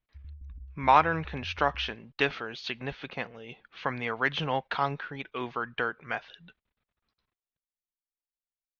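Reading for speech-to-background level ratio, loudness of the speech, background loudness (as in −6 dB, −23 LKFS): 17.5 dB, −30.0 LKFS, −47.5 LKFS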